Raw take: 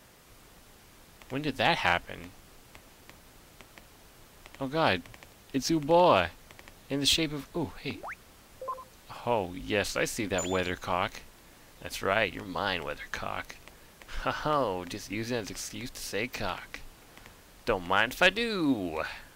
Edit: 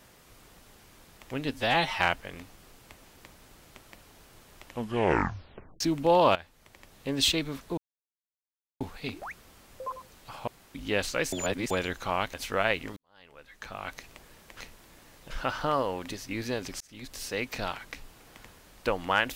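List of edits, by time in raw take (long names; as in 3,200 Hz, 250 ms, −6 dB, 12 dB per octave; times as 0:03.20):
0:01.54–0:01.85: time-stretch 1.5×
0:04.51: tape stop 1.14 s
0:06.20–0:06.95: fade in, from −16.5 dB
0:07.62: splice in silence 1.03 s
0:09.29–0:09.56: fill with room tone
0:10.14–0:10.52: reverse
0:11.15–0:11.85: move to 0:14.12
0:12.48–0:13.50: fade in quadratic
0:15.62–0:15.98: fade in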